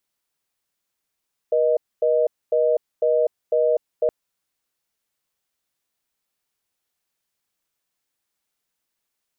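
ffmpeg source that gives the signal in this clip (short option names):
-f lavfi -i "aevalsrc='0.119*(sin(2*PI*480*t)+sin(2*PI*620*t))*clip(min(mod(t,0.5),0.25-mod(t,0.5))/0.005,0,1)':d=2.57:s=44100"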